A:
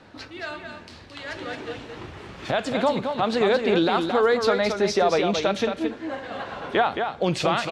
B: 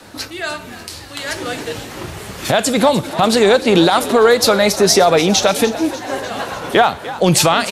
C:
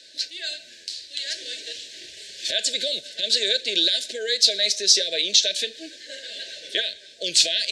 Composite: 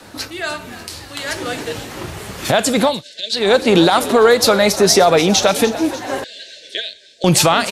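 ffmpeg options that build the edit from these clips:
-filter_complex "[2:a]asplit=2[a][b];[1:a]asplit=3[c][d][e];[c]atrim=end=3.04[f];[a]atrim=start=2.8:end=3.55[g];[d]atrim=start=3.31:end=6.242[h];[b]atrim=start=6.238:end=7.242[i];[e]atrim=start=7.238[j];[f][g]acrossfade=d=0.24:c1=tri:c2=tri[k];[k][h]acrossfade=d=0.24:c1=tri:c2=tri[l];[l][i]acrossfade=d=0.004:c1=hsin:c2=hsin[m];[m][j]acrossfade=d=0.004:c1=hsin:c2=hsin"

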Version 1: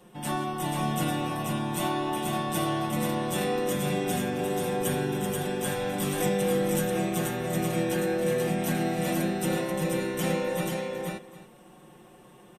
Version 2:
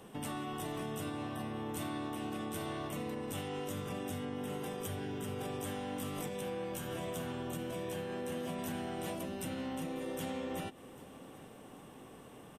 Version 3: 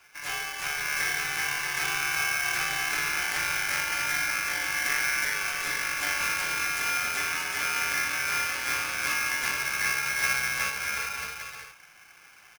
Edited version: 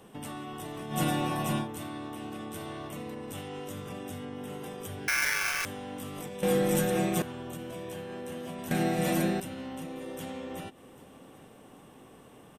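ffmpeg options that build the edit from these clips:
-filter_complex "[0:a]asplit=3[a][b][c];[1:a]asplit=5[d][e][f][g][h];[d]atrim=end=0.99[i];[a]atrim=start=0.89:end=1.69[j];[e]atrim=start=1.59:end=5.082[k];[2:a]atrim=start=5.078:end=5.652[l];[f]atrim=start=5.648:end=6.432[m];[b]atrim=start=6.428:end=7.222[n];[g]atrim=start=7.218:end=8.712[o];[c]atrim=start=8.708:end=9.402[p];[h]atrim=start=9.398[q];[i][j]acrossfade=d=0.1:c1=tri:c2=tri[r];[r][k]acrossfade=d=0.1:c1=tri:c2=tri[s];[s][l]acrossfade=d=0.004:c1=hsin:c2=hsin[t];[t][m]acrossfade=d=0.004:c1=hsin:c2=hsin[u];[u][n]acrossfade=d=0.004:c1=hsin:c2=hsin[v];[v][o]acrossfade=d=0.004:c1=hsin:c2=hsin[w];[w][p]acrossfade=d=0.004:c1=hsin:c2=hsin[x];[x][q]acrossfade=d=0.004:c1=hsin:c2=hsin"

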